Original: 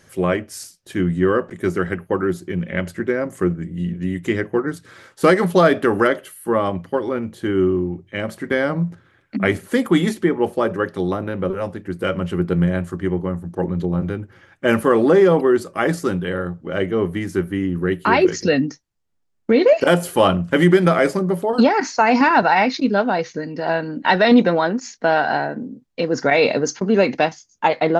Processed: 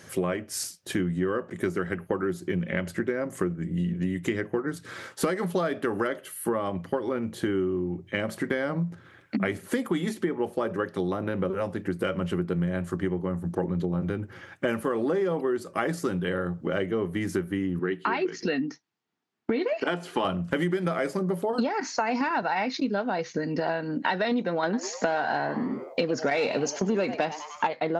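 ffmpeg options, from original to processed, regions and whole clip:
-filter_complex "[0:a]asettb=1/sr,asplit=3[s0][s1][s2];[s0]atrim=end=17.794[s3];[s1]atrim=start=17.79:end=20.25,asetpts=PTS-STARTPTS,afade=t=in:d=0.004:c=qsin,afade=t=out:st=2.456:d=0.004:c=qsin,highpass=220,lowpass=4400,equalizer=f=550:w=6.5:g=-13[s4];[s2]atrim=start=20.246[s5];[s3][s4]acrossfade=d=0.004:c1=hsin:c2=qsin[s6];[s6][s5]acrossfade=d=0.004:c1=qsin:c2=hsin,asettb=1/sr,asplit=3[s7][s8][s9];[s7]atrim=end=24.634[s10];[s8]atrim=start=24.63:end=27.67,asetpts=PTS-STARTPTS,afade=t=in:d=0.004:c=qsin,afade=t=out:st=3.036:d=0.004:c=qsin,acontrast=53,asplit=5[s11][s12][s13][s14][s15];[s12]adelay=99,afreqshift=140,volume=0.178[s16];[s13]adelay=198,afreqshift=280,volume=0.0692[s17];[s14]adelay=297,afreqshift=420,volume=0.0269[s18];[s15]adelay=396,afreqshift=560,volume=0.0106[s19];[s11][s16][s17][s18][s19]amix=inputs=5:normalize=0,atrim=end_sample=134064[s20];[s9]atrim=start=27.666[s21];[s10][s20]acrossfade=d=0.004:c1=hsin:c2=qsin[s22];[s22][s21]acrossfade=d=0.004:c1=qsin:c2=hsin,highpass=88,acompressor=threshold=0.0355:ratio=6,volume=1.58"

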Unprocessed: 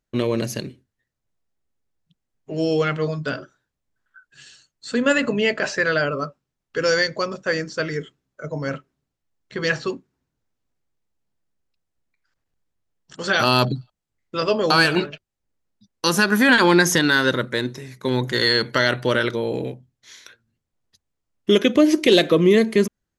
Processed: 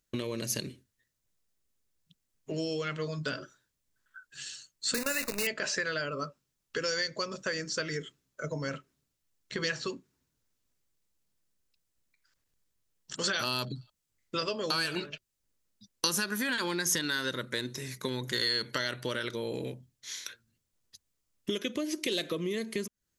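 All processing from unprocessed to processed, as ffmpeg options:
-filter_complex "[0:a]asettb=1/sr,asplit=3[s0][s1][s2];[s0]atrim=end=4.944[s3];[s1]atrim=start=4.94:end=5.47,asetpts=PTS-STARTPTS,afade=t=in:d=0.004:c=qsin,afade=t=out:st=0.526:d=0.004:c=qsin,lowshelf=f=470:g=-6.5,acrusher=bits=5:dc=4:mix=0:aa=0.000001,asuperstop=centerf=3200:order=8:qfactor=4.1[s4];[s2]atrim=start=5.466[s5];[s3][s4]acrossfade=d=0.004:c1=hsin:c2=qsin[s6];[s6][s5]acrossfade=d=0.004:c1=qsin:c2=hsin,equalizer=f=760:t=o:w=0.22:g=-6.5,acompressor=threshold=0.0355:ratio=6,highshelf=f=3300:g=12,volume=0.708"

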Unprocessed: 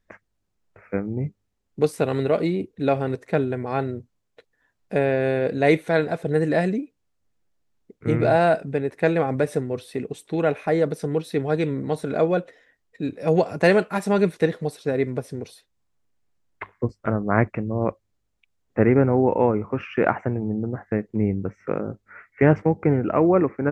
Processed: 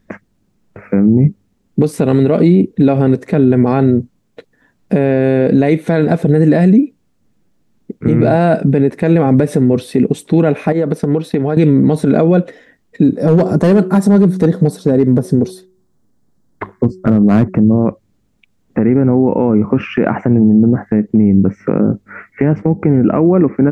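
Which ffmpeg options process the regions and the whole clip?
-filter_complex "[0:a]asettb=1/sr,asplit=3[s0][s1][s2];[s0]atrim=end=10.724[s3];[s1]atrim=start=10.72:end=11.57,asetpts=PTS-STARTPTS,afade=t=in:d=0.004:c=qsin,afade=t=out:st=0.846:d=0.004:c=qsin,agate=range=0.0224:threshold=0.0178:ratio=3:release=100:detection=peak,equalizer=f=1000:w=0.43:g=7.5,acompressor=threshold=0.0316:ratio=5:attack=3.2:release=140:knee=1:detection=peak[s4];[s2]atrim=start=11.566[s5];[s3][s4]acrossfade=d=0.004:c1=hsin:c2=qsin[s6];[s6][s5]acrossfade=d=0.004:c1=qsin:c2=hsin,asettb=1/sr,asplit=3[s7][s8][s9];[s7]atrim=end=13.034[s10];[s8]atrim=start=13.03:end=17.74,asetpts=PTS-STARTPTS,afade=t=in:d=0.004:c=qsin,afade=t=out:st=4.706:d=0.004:c=qsin,equalizer=f=2500:w=1.8:g=-13,asoftclip=type=hard:threshold=0.178,bandreject=f=185.9:t=h:w=4,bandreject=f=371.8:t=h:w=4[s11];[s9]atrim=start=17.736[s12];[s10][s11]acrossfade=d=0.004:c1=hsin:c2=qsin[s13];[s13][s12]acrossfade=d=0.004:c1=qsin:c2=hsin,equalizer=f=210:t=o:w=1.7:g=13.5,acompressor=threshold=0.2:ratio=10,alimiter=level_in=4.22:limit=0.891:release=50:level=0:latency=1,volume=0.891"

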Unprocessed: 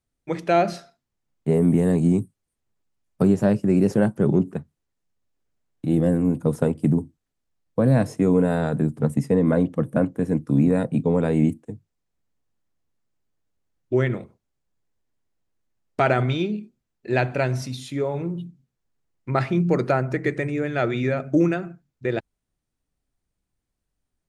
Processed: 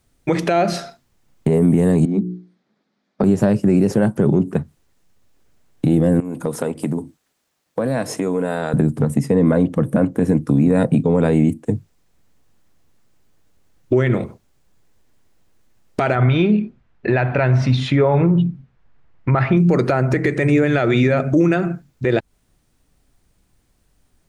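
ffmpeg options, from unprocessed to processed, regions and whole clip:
-filter_complex "[0:a]asettb=1/sr,asplit=3[s0][s1][s2];[s0]atrim=end=2.054[s3];[s1]atrim=start=2.05:end=3.24,asetpts=PTS-STARTPTS,afade=t=in:d=0.004:c=qsin,afade=t=out:st=1.186:d=0.004:c=qsin,highpass=f=180:w=0.5412,highpass=f=180:w=1.3066,equalizer=f=210:t=q:w=4:g=8,equalizer=f=980:t=q:w=4:g=-4,equalizer=f=2800:t=q:w=4:g=-9,lowpass=f=4500:w=0.5412,lowpass=f=4500:w=1.3066,bandreject=f=60:t=h:w=6,bandreject=f=120:t=h:w=6,bandreject=f=180:t=h:w=6,bandreject=f=240:t=h:w=6,bandreject=f=300:t=h:w=6,bandreject=f=360:t=h:w=6,bandreject=f=420:t=h:w=6,acompressor=threshold=0.0141:ratio=2:attack=3.2:release=140:knee=1:detection=peak[s4];[s2]atrim=start=3.236[s5];[s3][s4]acrossfade=d=0.004:c1=hsin:c2=qsin[s6];[s6][s5]acrossfade=d=0.004:c1=qsin:c2=hsin,asettb=1/sr,asplit=3[s7][s8][s9];[s7]atrim=end=6.204[s10];[s8]atrim=start=6.2:end=8.74,asetpts=PTS-STARTPTS,afade=t=in:d=0.004:c=qsin,afade=t=out:st=2.536:d=0.004:c=qsin,highpass=f=480:p=1,acompressor=threshold=0.00708:ratio=2.5:attack=3.2:release=140:knee=1:detection=peak[s11];[s9]atrim=start=8.736[s12];[s10][s11]acrossfade=d=0.004:c1=hsin:c2=qsin[s13];[s13][s12]acrossfade=d=0.004:c1=qsin:c2=hsin,asettb=1/sr,asplit=3[s14][s15][s16];[s14]atrim=end=16.154[s17];[s15]atrim=start=16.15:end=19.57,asetpts=PTS-STARTPTS,afade=t=in:d=0.004:c=qsin,afade=t=out:st=3.416:d=0.004:c=qsin,lowpass=2000,equalizer=f=320:t=o:w=2.2:g=-7.5,acontrast=31[s18];[s16]atrim=start=19.566[s19];[s17][s18]acrossfade=d=0.004:c1=hsin:c2=qsin[s20];[s20][s19]acrossfade=d=0.004:c1=qsin:c2=hsin,acompressor=threshold=0.0355:ratio=6,alimiter=level_in=15.8:limit=0.891:release=50:level=0:latency=1,volume=0.531"

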